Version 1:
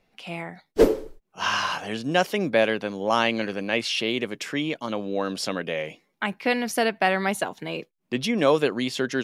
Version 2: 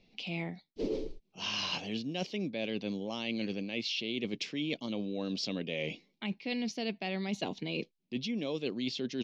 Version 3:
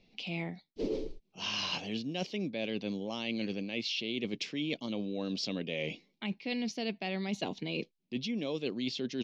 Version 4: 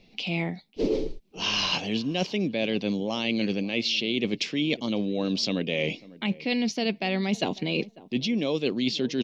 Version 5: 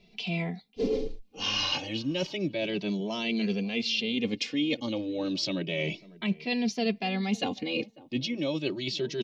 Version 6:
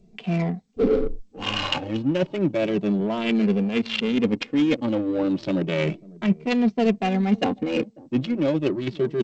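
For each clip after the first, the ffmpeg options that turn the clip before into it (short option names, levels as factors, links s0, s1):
-af "firequalizer=gain_entry='entry(140,0);entry(200,4);entry(550,-5);entry(1500,-17);entry(2300,0);entry(4200,5);entry(6200,-2);entry(9300,-28)':delay=0.05:min_phase=1,areverse,acompressor=threshold=0.0224:ratio=12,areverse,volume=1.19"
-af anull
-filter_complex "[0:a]asplit=2[s0][s1];[s1]adelay=547,lowpass=f=1100:p=1,volume=0.106,asplit=2[s2][s3];[s3]adelay=547,lowpass=f=1100:p=1,volume=0.16[s4];[s0][s2][s4]amix=inputs=3:normalize=0,volume=2.66"
-filter_complex "[0:a]asplit=2[s0][s1];[s1]adelay=2.6,afreqshift=0.32[s2];[s0][s2]amix=inputs=2:normalize=1"
-af "adynamicsmooth=sensitivity=2.5:basefreq=530,volume=2.66" -ar 16000 -c:a g722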